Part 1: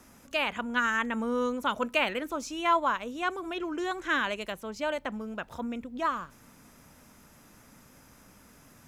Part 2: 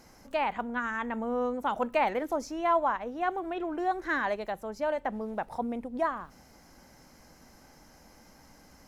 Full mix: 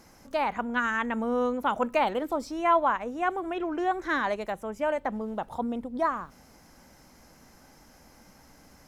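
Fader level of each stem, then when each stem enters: -7.0 dB, 0.0 dB; 0.00 s, 0.00 s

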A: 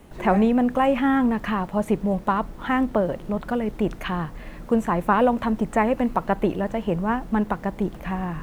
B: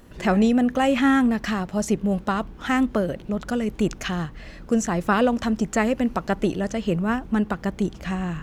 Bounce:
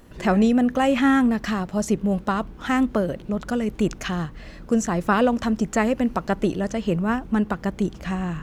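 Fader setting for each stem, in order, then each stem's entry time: -16.5 dB, -0.5 dB; 0.00 s, 0.00 s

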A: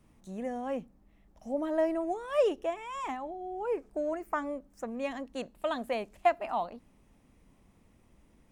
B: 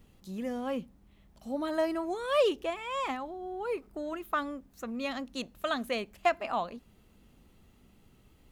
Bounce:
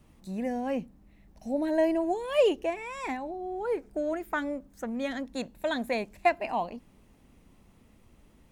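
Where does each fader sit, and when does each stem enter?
+2.5 dB, -4.0 dB; 0.00 s, 0.00 s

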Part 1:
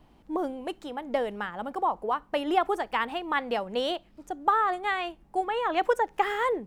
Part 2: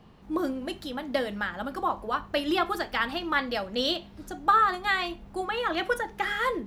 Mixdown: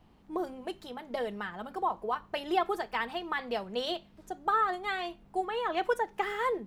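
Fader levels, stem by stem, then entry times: -5.5 dB, -11.0 dB; 0.00 s, 0.00 s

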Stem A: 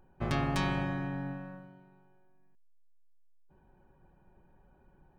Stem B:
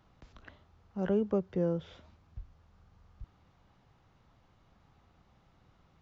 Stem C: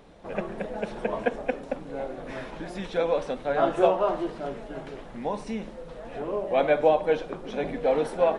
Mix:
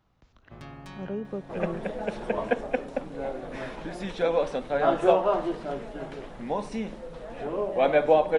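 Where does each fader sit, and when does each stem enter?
-13.0 dB, -4.5 dB, +0.5 dB; 0.30 s, 0.00 s, 1.25 s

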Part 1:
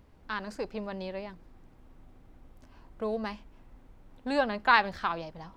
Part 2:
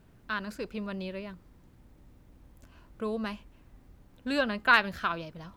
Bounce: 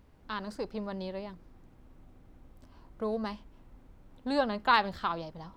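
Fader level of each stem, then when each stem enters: -2.0 dB, -11.5 dB; 0.00 s, 0.00 s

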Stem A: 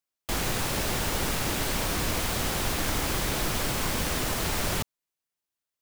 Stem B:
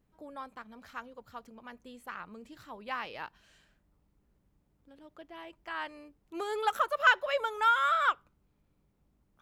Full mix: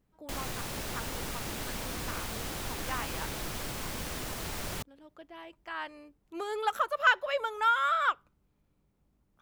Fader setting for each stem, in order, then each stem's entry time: -9.0 dB, -0.5 dB; 0.00 s, 0.00 s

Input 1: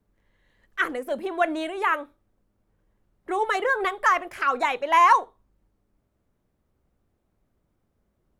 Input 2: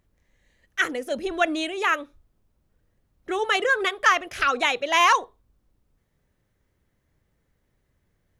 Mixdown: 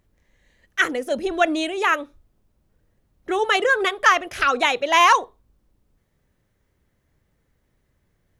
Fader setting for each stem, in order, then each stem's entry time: -10.5 dB, +2.5 dB; 0.00 s, 0.00 s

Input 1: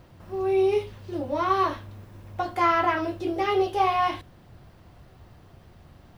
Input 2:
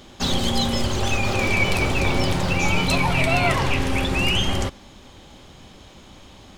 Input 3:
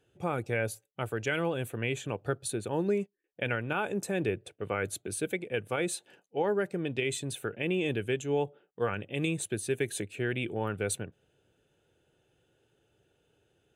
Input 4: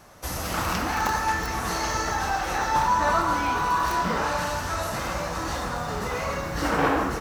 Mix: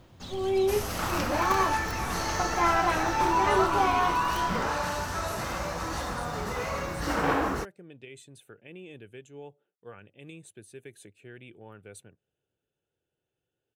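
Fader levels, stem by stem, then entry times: -3.5 dB, -19.5 dB, -15.5 dB, -3.5 dB; 0.00 s, 0.00 s, 1.05 s, 0.45 s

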